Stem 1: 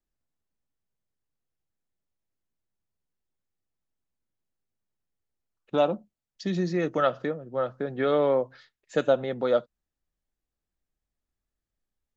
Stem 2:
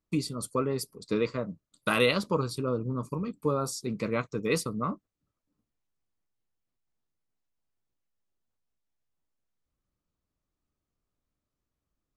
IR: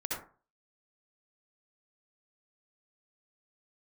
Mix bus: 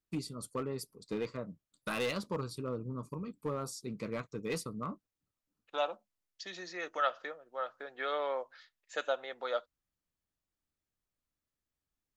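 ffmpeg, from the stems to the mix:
-filter_complex "[0:a]highpass=900,volume=-3dB[link_01];[1:a]asoftclip=type=hard:threshold=-21dB,volume=-8dB[link_02];[link_01][link_02]amix=inputs=2:normalize=0"

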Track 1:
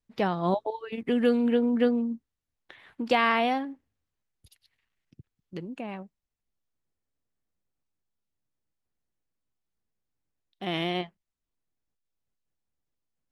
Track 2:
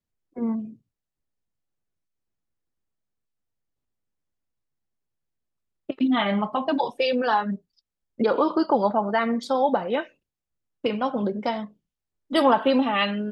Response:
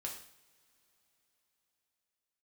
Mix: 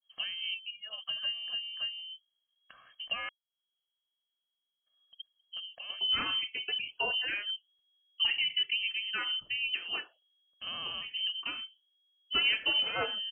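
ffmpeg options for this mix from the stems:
-filter_complex "[0:a]equalizer=frequency=3300:width_type=o:width=1.5:gain=-6,aecho=1:1:1.9:0.88,acompressor=threshold=-44dB:ratio=1.5,volume=2dB,asplit=3[link_01][link_02][link_03];[link_01]atrim=end=3.29,asetpts=PTS-STARTPTS,afade=type=out:start_time=3.286:duration=0.004:curve=hsin[link_04];[link_02]atrim=start=3.29:end=4.86,asetpts=PTS-STARTPTS,volume=0[link_05];[link_03]atrim=start=4.86,asetpts=PTS-STARTPTS,afade=type=in:duration=0.004:curve=hsin[link_06];[link_04][link_05][link_06]concat=n=3:v=0:a=1,asplit=2[link_07][link_08];[1:a]lowshelf=frequency=210:gain=-6.5,volume=-1dB[link_09];[link_08]apad=whole_len=587216[link_10];[link_09][link_10]sidechaincompress=threshold=-41dB:ratio=8:attack=5.9:release=236[link_11];[link_07][link_11]amix=inputs=2:normalize=0,equalizer=frequency=920:width=0.75:gain=-12.5,lowpass=frequency=2800:width_type=q:width=0.5098,lowpass=frequency=2800:width_type=q:width=0.6013,lowpass=frequency=2800:width_type=q:width=0.9,lowpass=frequency=2800:width_type=q:width=2.563,afreqshift=-3300,adynamicequalizer=threshold=0.00794:dfrequency=1700:dqfactor=0.7:tfrequency=1700:tqfactor=0.7:attack=5:release=100:ratio=0.375:range=2:mode=cutabove:tftype=highshelf"

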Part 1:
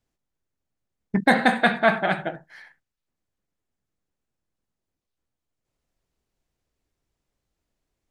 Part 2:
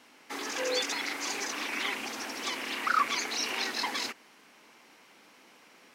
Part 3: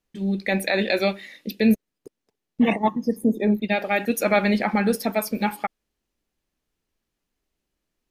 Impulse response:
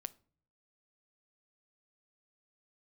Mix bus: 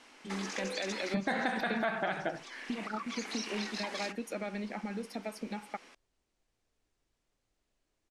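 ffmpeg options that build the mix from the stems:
-filter_complex "[0:a]acompressor=threshold=-20dB:ratio=6,volume=-1dB,asplit=2[link_01][link_02];[1:a]acompressor=threshold=-39dB:ratio=4,volume=0.5dB[link_03];[2:a]acrossover=split=380[link_04][link_05];[link_05]acompressor=threshold=-41dB:ratio=1.5[link_06];[link_04][link_06]amix=inputs=2:normalize=0,acompressor=threshold=-27dB:ratio=6,adelay=100,volume=-5.5dB[link_07];[link_02]apad=whole_len=262262[link_08];[link_03][link_08]sidechaincompress=threshold=-36dB:ratio=8:attack=46:release=1010[link_09];[link_01][link_09]amix=inputs=2:normalize=0,equalizer=frequency=110:width_type=o:width=0.33:gain=14,alimiter=limit=-20.5dB:level=0:latency=1:release=127,volume=0dB[link_10];[link_07][link_10]amix=inputs=2:normalize=0,lowpass=frequency=10000:width=0.5412,lowpass=frequency=10000:width=1.3066,equalizer=frequency=110:width=1.2:gain=-12.5"

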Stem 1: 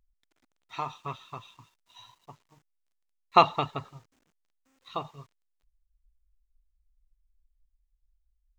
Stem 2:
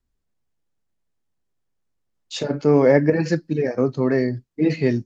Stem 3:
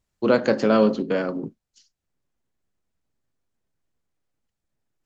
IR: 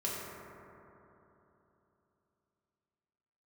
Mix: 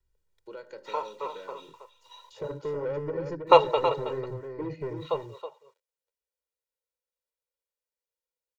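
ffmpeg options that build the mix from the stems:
-filter_complex "[0:a]highpass=frequency=500:width_type=q:width=5,adelay=150,volume=-4dB,asplit=2[link_01][link_02];[link_02]volume=-10dB[link_03];[1:a]acrossover=split=320|1200[link_04][link_05][link_06];[link_04]acompressor=threshold=-32dB:ratio=4[link_07];[link_05]acompressor=threshold=-30dB:ratio=4[link_08];[link_06]acompressor=threshold=-59dB:ratio=4[link_09];[link_07][link_08][link_09]amix=inputs=3:normalize=0,asoftclip=type=tanh:threshold=-26dB,volume=-4.5dB,asplit=2[link_10][link_11];[link_11]volume=-5.5dB[link_12];[2:a]highpass=frequency=290:poles=1,acompressor=threshold=-30dB:ratio=3,adelay=250,volume=-16.5dB[link_13];[link_03][link_12]amix=inputs=2:normalize=0,aecho=0:1:322:1[link_14];[link_01][link_10][link_13][link_14]amix=inputs=4:normalize=0,aecho=1:1:2.1:0.9"

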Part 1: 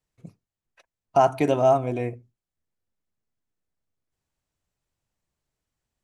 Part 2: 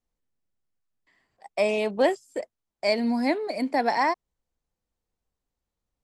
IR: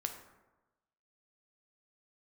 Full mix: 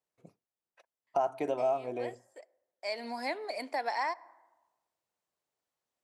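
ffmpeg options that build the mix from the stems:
-filter_complex "[0:a]highpass=frequency=350:poles=1,equalizer=frequency=600:width=0.58:gain=8.5,volume=-9dB[link_01];[1:a]highpass=610,volume=-3.5dB,afade=type=in:start_time=2.79:duration=0.27:silence=0.223872,asplit=2[link_02][link_03];[link_03]volume=-15.5dB[link_04];[2:a]atrim=start_sample=2205[link_05];[link_04][link_05]afir=irnorm=-1:irlink=0[link_06];[link_01][link_02][link_06]amix=inputs=3:normalize=0,acompressor=threshold=-33dB:ratio=2"

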